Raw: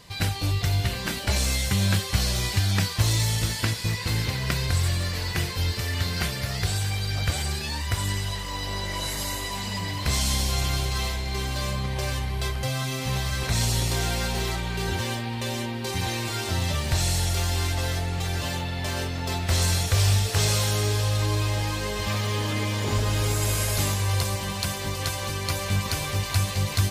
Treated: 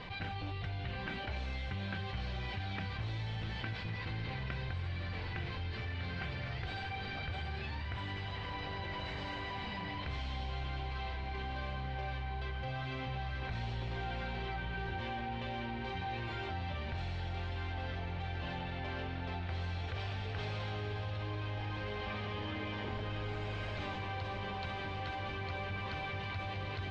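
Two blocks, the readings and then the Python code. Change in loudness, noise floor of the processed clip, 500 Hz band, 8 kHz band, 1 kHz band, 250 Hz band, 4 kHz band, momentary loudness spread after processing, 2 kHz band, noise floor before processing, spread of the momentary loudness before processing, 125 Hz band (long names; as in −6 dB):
−14.0 dB, −41 dBFS, −11.5 dB, below −35 dB, −8.0 dB, −12.5 dB, −16.5 dB, 1 LU, −10.0 dB, −32 dBFS, 6 LU, −14.5 dB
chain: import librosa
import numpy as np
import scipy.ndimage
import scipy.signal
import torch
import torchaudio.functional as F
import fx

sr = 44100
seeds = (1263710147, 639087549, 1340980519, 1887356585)

y = scipy.signal.sosfilt(scipy.signal.butter(4, 3200.0, 'lowpass', fs=sr, output='sos'), x)
y = fx.hum_notches(y, sr, base_hz=50, count=4)
y = fx.comb_fb(y, sr, f0_hz=770.0, decay_s=0.24, harmonics='all', damping=0.0, mix_pct=80)
y = fx.echo_diffused(y, sr, ms=1304, feedback_pct=75, wet_db=-13.0)
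y = fx.env_flatten(y, sr, amount_pct=70)
y = F.gain(torch.from_numpy(y), -4.5).numpy()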